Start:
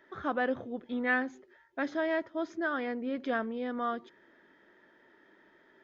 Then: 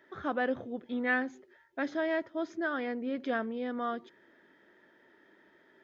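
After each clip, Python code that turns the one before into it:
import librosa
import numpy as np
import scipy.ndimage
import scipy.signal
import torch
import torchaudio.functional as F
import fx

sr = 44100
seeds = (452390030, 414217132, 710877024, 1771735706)

y = scipy.signal.sosfilt(scipy.signal.butter(2, 53.0, 'highpass', fs=sr, output='sos'), x)
y = fx.peak_eq(y, sr, hz=1100.0, db=-2.5, octaves=0.77)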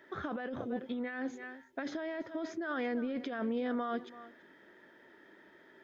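y = x + 10.0 ** (-21.0 / 20.0) * np.pad(x, (int(332 * sr / 1000.0), 0))[:len(x)]
y = fx.over_compress(y, sr, threshold_db=-36.0, ratio=-1.0)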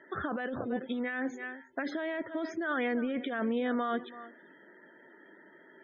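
y = fx.dynamic_eq(x, sr, hz=2400.0, q=0.75, threshold_db=-56.0, ratio=4.0, max_db=4)
y = fx.spec_topn(y, sr, count=64)
y = y * librosa.db_to_amplitude(3.0)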